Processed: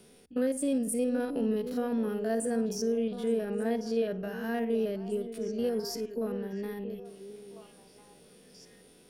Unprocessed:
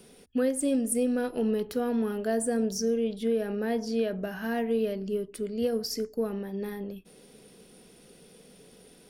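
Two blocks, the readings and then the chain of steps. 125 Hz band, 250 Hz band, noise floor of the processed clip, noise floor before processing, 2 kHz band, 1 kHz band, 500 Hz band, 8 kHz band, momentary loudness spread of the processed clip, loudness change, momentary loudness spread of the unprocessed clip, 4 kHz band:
no reading, -2.0 dB, -58 dBFS, -56 dBFS, -3.5 dB, -2.5 dB, -2.0 dB, -4.5 dB, 10 LU, -2.0 dB, 8 LU, -4.0 dB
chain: spectrogram pixelated in time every 50 ms; repeats whose band climbs or falls 674 ms, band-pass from 340 Hz, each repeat 1.4 oct, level -6.5 dB; trim -2 dB

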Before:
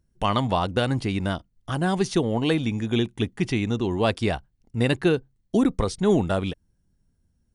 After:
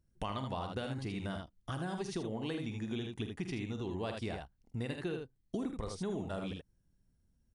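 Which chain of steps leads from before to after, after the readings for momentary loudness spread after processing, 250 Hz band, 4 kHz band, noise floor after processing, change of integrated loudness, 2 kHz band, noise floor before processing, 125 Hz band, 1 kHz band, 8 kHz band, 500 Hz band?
5 LU, -15.0 dB, -14.5 dB, -74 dBFS, -15.0 dB, -15.0 dB, -69 dBFS, -14.0 dB, -15.0 dB, -13.5 dB, -15.5 dB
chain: on a send: early reflections 46 ms -10.5 dB, 78 ms -6.5 dB; on the sum: compression 4:1, threshold -30 dBFS, peak gain reduction 14 dB; trim -6.5 dB

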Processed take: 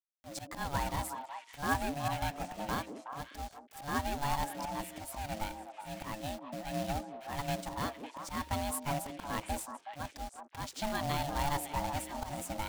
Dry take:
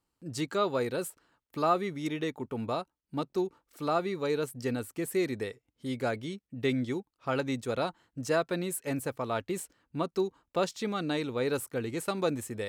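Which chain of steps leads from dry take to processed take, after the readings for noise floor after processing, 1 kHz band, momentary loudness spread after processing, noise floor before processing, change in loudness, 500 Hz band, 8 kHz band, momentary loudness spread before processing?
-57 dBFS, +0.5 dB, 10 LU, -85 dBFS, -5.0 dB, -11.0 dB, -0.5 dB, 8 LU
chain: slow attack 196 ms; de-hum 250.7 Hz, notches 3; in parallel at 0 dB: compression 6:1, threshold -45 dBFS, peak gain reduction 20.5 dB; on the sum: ring modulator 430 Hz; companded quantiser 4-bit; on a send: repeats whose band climbs or falls 185 ms, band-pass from 360 Hz, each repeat 1.4 oct, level -2.5 dB; on the sum: trim -1.5 dB

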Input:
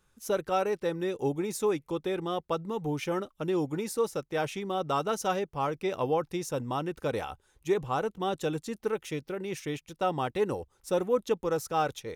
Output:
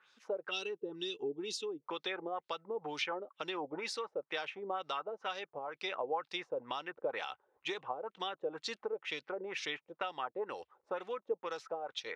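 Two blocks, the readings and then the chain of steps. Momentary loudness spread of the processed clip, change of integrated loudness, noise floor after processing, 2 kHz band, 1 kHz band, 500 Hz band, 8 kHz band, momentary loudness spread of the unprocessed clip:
4 LU, -8.5 dB, under -85 dBFS, -1.5 dB, -8.5 dB, -10.0 dB, -10.0 dB, 6 LU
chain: frequency weighting A; time-frequency box 0.51–1.82 s, 460–2600 Hz -18 dB; bass shelf 470 Hz -10.5 dB; compression 6:1, threshold -42 dBFS, peak gain reduction 15.5 dB; LFO low-pass sine 2.1 Hz 490–4700 Hz; trim +4.5 dB

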